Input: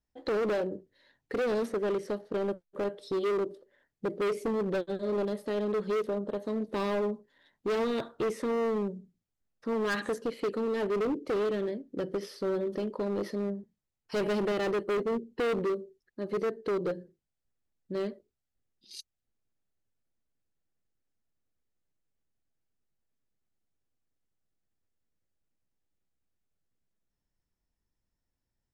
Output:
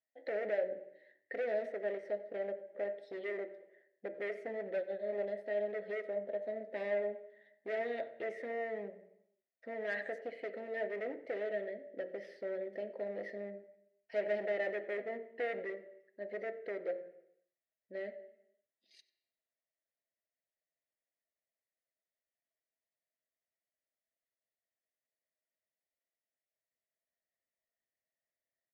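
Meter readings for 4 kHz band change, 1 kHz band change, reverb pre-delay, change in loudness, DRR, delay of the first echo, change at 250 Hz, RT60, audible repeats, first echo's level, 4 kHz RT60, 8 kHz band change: −15.0 dB, −11.0 dB, 3 ms, −8.0 dB, 9.0 dB, 93 ms, −17.0 dB, 0.80 s, 1, −21.5 dB, 0.85 s, can't be measured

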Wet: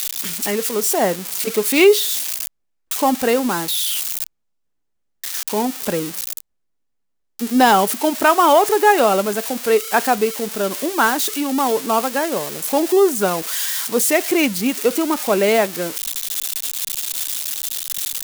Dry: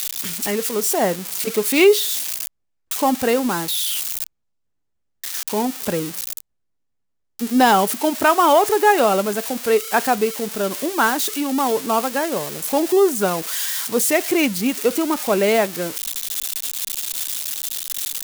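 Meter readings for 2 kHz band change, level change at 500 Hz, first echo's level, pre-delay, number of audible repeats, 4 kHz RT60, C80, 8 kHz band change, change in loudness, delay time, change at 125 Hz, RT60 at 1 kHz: +1.5 dB, +1.5 dB, no echo audible, no reverb audible, no echo audible, no reverb audible, no reverb audible, +1.5 dB, +1.5 dB, no echo audible, −0.5 dB, no reverb audible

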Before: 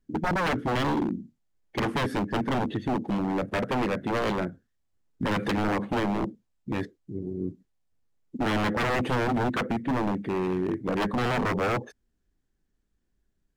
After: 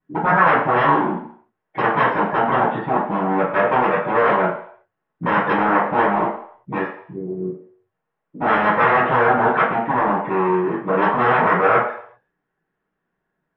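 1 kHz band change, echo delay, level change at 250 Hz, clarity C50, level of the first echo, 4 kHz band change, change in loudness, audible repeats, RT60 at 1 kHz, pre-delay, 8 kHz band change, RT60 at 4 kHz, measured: +14.5 dB, no echo audible, +3.5 dB, 4.0 dB, no echo audible, −0.5 dB, +10.0 dB, no echo audible, 0.60 s, 3 ms, below −25 dB, 0.60 s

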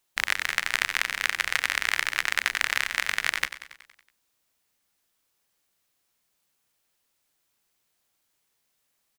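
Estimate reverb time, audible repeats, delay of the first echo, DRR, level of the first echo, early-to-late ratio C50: no reverb audible, 5, 93 ms, no reverb audible, −13.0 dB, no reverb audible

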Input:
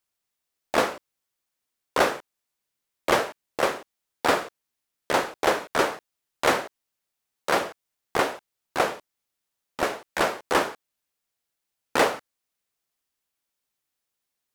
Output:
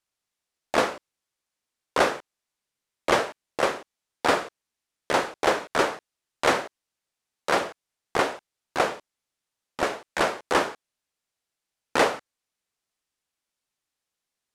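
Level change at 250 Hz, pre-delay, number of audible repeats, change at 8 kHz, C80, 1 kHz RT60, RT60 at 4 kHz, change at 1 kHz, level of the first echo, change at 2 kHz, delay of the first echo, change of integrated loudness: 0.0 dB, no reverb audible, no echo audible, −1.0 dB, no reverb audible, no reverb audible, no reverb audible, 0.0 dB, no echo audible, 0.0 dB, no echo audible, 0.0 dB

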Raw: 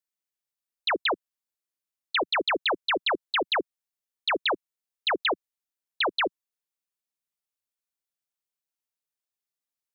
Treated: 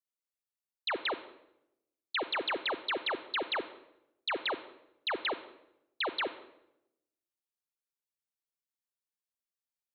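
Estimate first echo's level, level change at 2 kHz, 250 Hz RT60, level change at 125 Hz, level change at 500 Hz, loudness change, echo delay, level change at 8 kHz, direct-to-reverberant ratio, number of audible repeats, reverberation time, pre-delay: no echo audible, −7.0 dB, 1.0 s, can't be measured, −7.5 dB, −7.5 dB, no echo audible, can't be measured, 12.0 dB, no echo audible, 0.85 s, 34 ms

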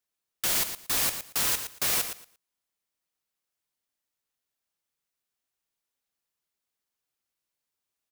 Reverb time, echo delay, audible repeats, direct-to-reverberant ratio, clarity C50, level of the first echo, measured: no reverb audible, 115 ms, 2, no reverb audible, no reverb audible, −9.5 dB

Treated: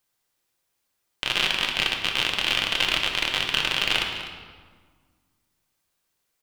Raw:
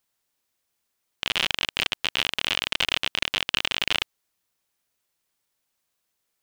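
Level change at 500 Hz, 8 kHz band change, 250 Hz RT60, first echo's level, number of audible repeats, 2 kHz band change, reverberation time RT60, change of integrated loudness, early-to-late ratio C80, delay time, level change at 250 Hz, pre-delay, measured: +2.5 dB, +1.5 dB, 2.0 s, −14.0 dB, 1, +2.5 dB, 1.6 s, +2.0 dB, 5.5 dB, 250 ms, +3.0 dB, 3 ms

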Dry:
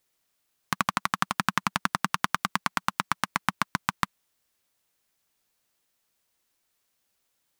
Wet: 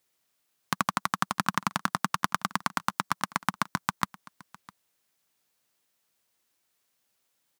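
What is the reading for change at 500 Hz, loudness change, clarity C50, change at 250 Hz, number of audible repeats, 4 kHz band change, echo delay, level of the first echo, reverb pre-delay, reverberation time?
0.0 dB, −1.5 dB, no reverb audible, 0.0 dB, 1, −2.5 dB, 656 ms, −22.0 dB, no reverb audible, no reverb audible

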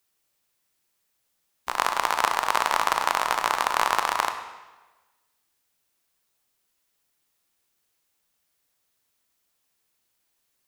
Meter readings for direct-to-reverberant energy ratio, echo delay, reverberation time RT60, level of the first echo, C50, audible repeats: 6.5 dB, no echo audible, 1.2 s, no echo audible, 8.5 dB, no echo audible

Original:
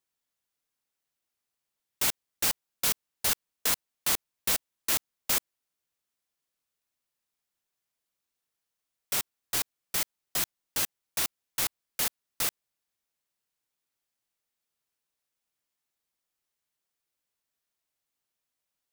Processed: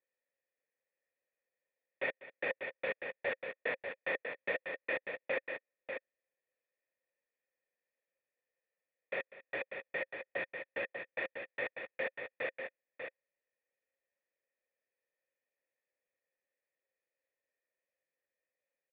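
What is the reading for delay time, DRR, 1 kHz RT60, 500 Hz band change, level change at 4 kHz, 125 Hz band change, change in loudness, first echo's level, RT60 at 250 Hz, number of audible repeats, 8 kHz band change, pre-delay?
196 ms, no reverb audible, no reverb audible, +6.5 dB, −20.0 dB, −14.0 dB, −10.5 dB, −17.0 dB, no reverb audible, 2, below −40 dB, no reverb audible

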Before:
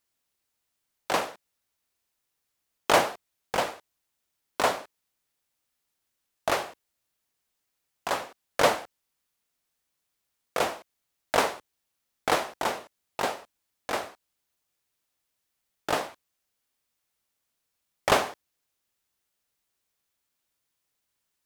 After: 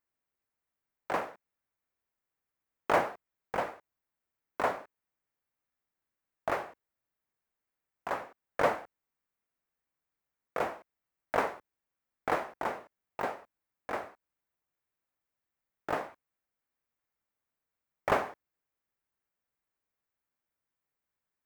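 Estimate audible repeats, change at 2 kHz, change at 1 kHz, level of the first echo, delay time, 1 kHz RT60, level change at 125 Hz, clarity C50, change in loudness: no echo audible, −6.0 dB, −5.0 dB, no echo audible, no echo audible, no reverb audible, −5.0 dB, no reverb audible, −6.0 dB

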